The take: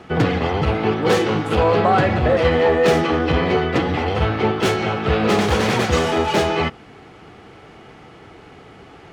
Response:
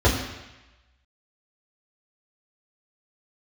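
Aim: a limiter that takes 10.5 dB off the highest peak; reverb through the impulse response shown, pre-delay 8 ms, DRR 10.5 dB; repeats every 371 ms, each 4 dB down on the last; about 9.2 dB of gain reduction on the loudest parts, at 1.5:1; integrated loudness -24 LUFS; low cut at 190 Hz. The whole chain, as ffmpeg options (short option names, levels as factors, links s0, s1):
-filter_complex "[0:a]highpass=190,acompressor=threshold=0.0112:ratio=1.5,alimiter=level_in=1.06:limit=0.0631:level=0:latency=1,volume=0.944,aecho=1:1:371|742|1113|1484|1855|2226|2597|2968|3339:0.631|0.398|0.25|0.158|0.0994|0.0626|0.0394|0.0249|0.0157,asplit=2[s0][s1];[1:a]atrim=start_sample=2205,adelay=8[s2];[s1][s2]afir=irnorm=-1:irlink=0,volume=0.0335[s3];[s0][s3]amix=inputs=2:normalize=0,volume=2"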